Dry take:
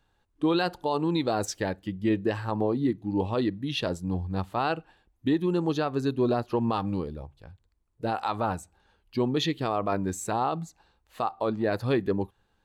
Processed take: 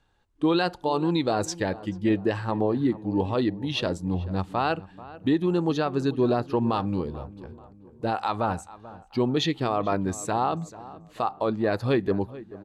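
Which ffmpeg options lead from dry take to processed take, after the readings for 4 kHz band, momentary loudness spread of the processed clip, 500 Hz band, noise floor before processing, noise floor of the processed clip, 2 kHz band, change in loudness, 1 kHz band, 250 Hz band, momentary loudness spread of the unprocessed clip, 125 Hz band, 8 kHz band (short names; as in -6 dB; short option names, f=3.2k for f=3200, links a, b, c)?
+2.0 dB, 11 LU, +2.0 dB, -71 dBFS, -53 dBFS, +2.0 dB, +2.0 dB, +2.0 dB, +2.0 dB, 7 LU, +2.0 dB, +1.0 dB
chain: -filter_complex "[0:a]lowpass=9.7k,asplit=2[a][b];[b]adelay=437,lowpass=f=1.8k:p=1,volume=-17dB,asplit=2[c][d];[d]adelay=437,lowpass=f=1.8k:p=1,volume=0.45,asplit=2[e][f];[f]adelay=437,lowpass=f=1.8k:p=1,volume=0.45,asplit=2[g][h];[h]adelay=437,lowpass=f=1.8k:p=1,volume=0.45[i];[a][c][e][g][i]amix=inputs=5:normalize=0,volume=2dB"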